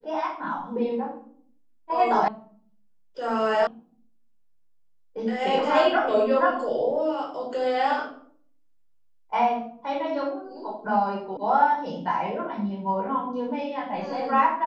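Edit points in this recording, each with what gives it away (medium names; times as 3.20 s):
2.28 s: sound stops dead
3.67 s: sound stops dead
11.37 s: sound stops dead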